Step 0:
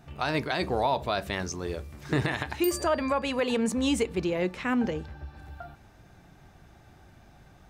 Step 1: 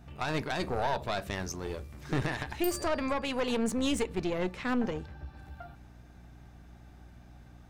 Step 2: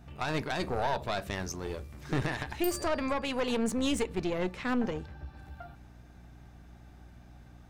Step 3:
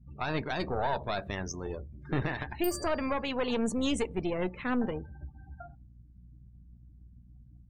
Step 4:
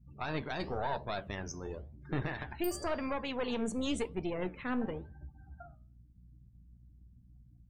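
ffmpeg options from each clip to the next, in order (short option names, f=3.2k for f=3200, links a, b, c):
-af "aeval=exprs='(tanh(14.1*val(0)+0.65)-tanh(0.65))/14.1':c=same,aeval=exprs='val(0)+0.00251*(sin(2*PI*60*n/s)+sin(2*PI*2*60*n/s)/2+sin(2*PI*3*60*n/s)/3+sin(2*PI*4*60*n/s)/4+sin(2*PI*5*60*n/s)/5)':c=same"
-af anull
-af "afftdn=nr=35:nf=-44"
-af "flanger=delay=5.9:depth=9.2:regen=-80:speed=0.95:shape=sinusoidal"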